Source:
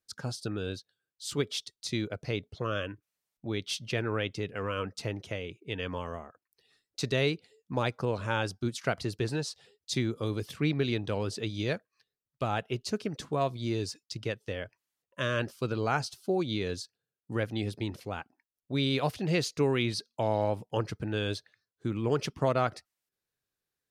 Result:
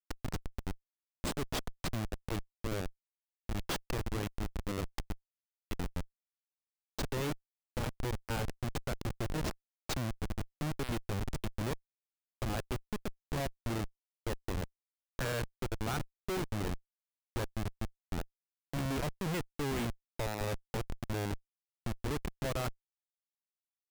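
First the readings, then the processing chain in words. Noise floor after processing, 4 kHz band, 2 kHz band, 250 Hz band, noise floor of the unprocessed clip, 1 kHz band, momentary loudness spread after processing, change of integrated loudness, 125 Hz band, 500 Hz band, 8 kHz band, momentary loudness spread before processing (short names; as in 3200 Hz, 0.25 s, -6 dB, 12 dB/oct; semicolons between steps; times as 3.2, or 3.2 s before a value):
under -85 dBFS, -8.0 dB, -7.0 dB, -6.0 dB, under -85 dBFS, -6.5 dB, 9 LU, -6.5 dB, -4.5 dB, -9.0 dB, -3.0 dB, 11 LU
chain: low-pass sweep 8400 Hz -> 2000 Hz, 11.37–13.3; Schmitt trigger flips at -28 dBFS; gain -1 dB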